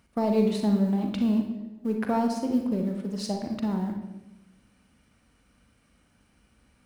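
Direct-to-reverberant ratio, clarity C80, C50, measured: 3.5 dB, 8.5 dB, 5.0 dB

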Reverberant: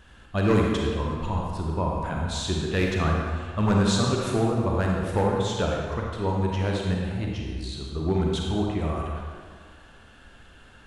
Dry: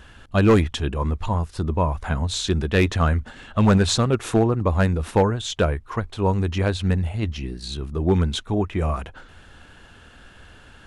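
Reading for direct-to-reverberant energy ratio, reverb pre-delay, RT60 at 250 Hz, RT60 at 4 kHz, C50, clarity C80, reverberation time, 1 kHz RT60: −1.5 dB, 35 ms, 1.8 s, 1.4 s, −0.5 dB, 2.0 dB, 1.8 s, 1.9 s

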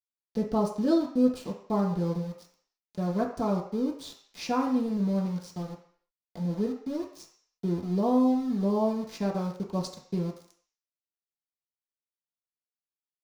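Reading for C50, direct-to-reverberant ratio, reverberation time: 7.0 dB, −3.5 dB, 0.55 s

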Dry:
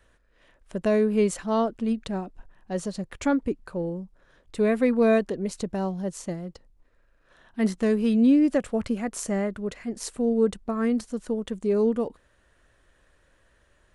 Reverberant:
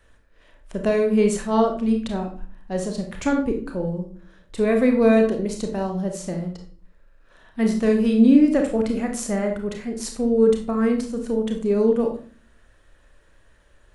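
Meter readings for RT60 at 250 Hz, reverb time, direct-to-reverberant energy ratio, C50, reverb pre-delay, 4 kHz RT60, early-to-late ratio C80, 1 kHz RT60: 0.70 s, 0.45 s, 3.0 dB, 7.5 dB, 27 ms, 0.35 s, 12.5 dB, 0.45 s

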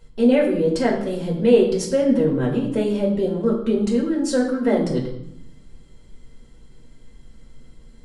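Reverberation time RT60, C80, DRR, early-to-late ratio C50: 0.75 s, 9.5 dB, −4.0 dB, 6.5 dB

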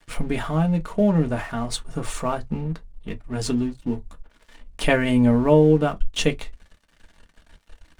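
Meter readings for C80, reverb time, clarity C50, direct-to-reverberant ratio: 44.5 dB, non-exponential decay, 28.0 dB, 4.0 dB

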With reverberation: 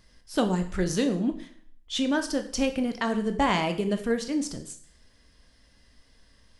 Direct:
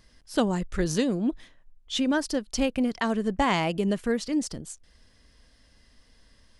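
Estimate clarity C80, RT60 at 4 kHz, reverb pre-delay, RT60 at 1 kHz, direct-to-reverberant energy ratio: 15.0 dB, 0.55 s, 6 ms, 0.55 s, 6.5 dB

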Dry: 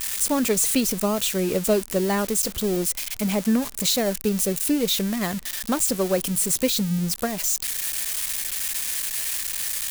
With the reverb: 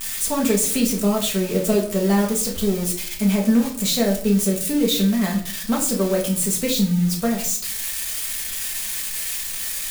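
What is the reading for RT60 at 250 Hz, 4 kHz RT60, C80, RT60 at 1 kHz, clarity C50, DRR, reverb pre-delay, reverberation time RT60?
0.80 s, 0.35 s, 13.0 dB, 0.50 s, 8.5 dB, −2.0 dB, 4 ms, 0.55 s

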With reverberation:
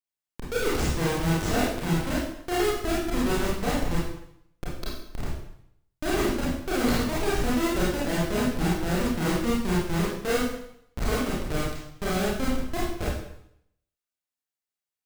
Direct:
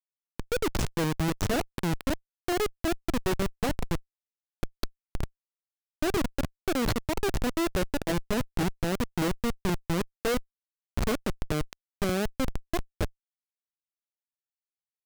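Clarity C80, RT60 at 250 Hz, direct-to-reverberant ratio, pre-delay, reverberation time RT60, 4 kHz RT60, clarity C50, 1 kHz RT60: 4.5 dB, 0.70 s, −7.0 dB, 26 ms, 0.70 s, 0.70 s, −0.5 dB, 0.75 s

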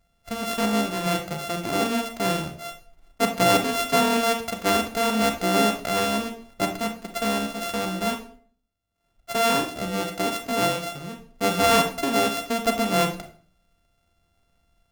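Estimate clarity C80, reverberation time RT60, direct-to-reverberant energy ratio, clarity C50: 13.5 dB, 0.50 s, 5.0 dB, 8.5 dB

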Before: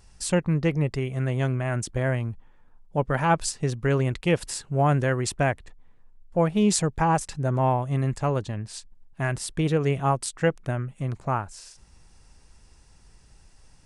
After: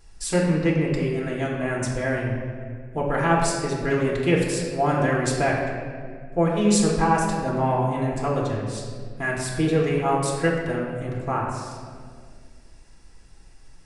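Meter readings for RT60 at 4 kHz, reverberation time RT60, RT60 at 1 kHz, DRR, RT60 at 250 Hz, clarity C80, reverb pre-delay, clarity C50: 1.2 s, 2.0 s, 1.7 s, −3.5 dB, 2.6 s, 3.5 dB, 3 ms, 1.5 dB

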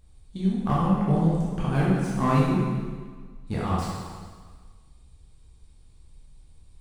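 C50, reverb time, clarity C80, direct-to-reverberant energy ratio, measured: −1.5 dB, 1.6 s, 1.0 dB, −6.0 dB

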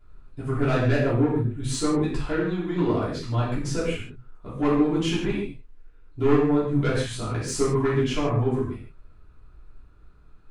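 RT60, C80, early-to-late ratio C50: non-exponential decay, 5.5 dB, 1.5 dB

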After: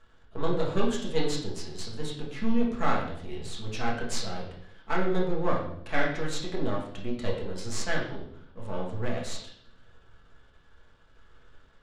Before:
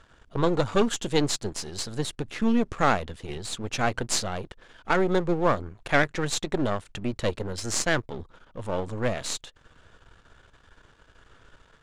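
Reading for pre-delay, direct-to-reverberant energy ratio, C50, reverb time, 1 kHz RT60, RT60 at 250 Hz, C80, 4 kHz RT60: 5 ms, −3.5 dB, 5.0 dB, 0.70 s, 0.60 s, 0.90 s, 8.5 dB, 0.65 s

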